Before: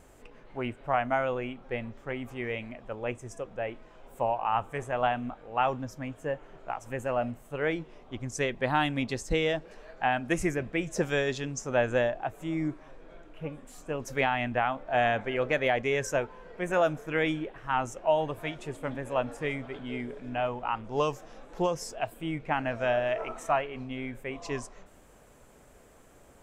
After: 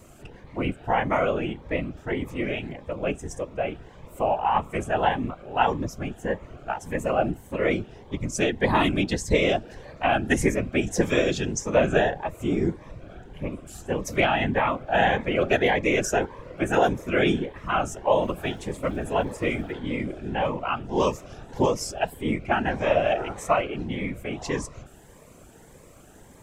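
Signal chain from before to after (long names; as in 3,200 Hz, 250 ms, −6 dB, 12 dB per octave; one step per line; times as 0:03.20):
random phases in short frames
0:18.22–0:19.71: surface crackle 440 per second −57 dBFS
phaser whose notches keep moving one way rising 1.7 Hz
level +7.5 dB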